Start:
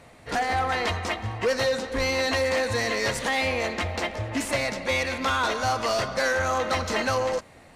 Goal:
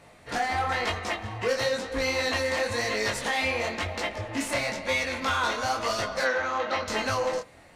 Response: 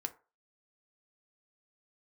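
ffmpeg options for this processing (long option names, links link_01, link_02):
-filter_complex "[0:a]asettb=1/sr,asplit=3[link_01][link_02][link_03];[link_01]atrim=end=6.244[link_04];[link_02]atrim=start=6.24:end=6.88,asetpts=PTS-STARTPTS,afade=type=in:duration=0.004:curve=qsin,afade=type=out:start_time=0.636:duration=0.004:curve=qsin,acrossover=split=180 5100:gain=0.224 1 0.0631[link_05][link_06][link_07];[link_05][link_06][link_07]amix=inputs=3:normalize=0[link_08];[link_03]atrim=start=6.876[link_09];[link_04][link_08]acrossfade=duration=0.004:curve1=hsin:curve2=qsin[link_10];[link_10][link_09]acrossfade=duration=0.004:curve1=qsin:curve2=hsin,flanger=delay=18.5:depth=7.8:speed=1,asplit=2[link_11][link_12];[1:a]atrim=start_sample=2205,lowshelf=frequency=390:gain=-10[link_13];[link_12][link_13]afir=irnorm=-1:irlink=0,volume=-4dB[link_14];[link_11][link_14]amix=inputs=2:normalize=0,volume=-2dB"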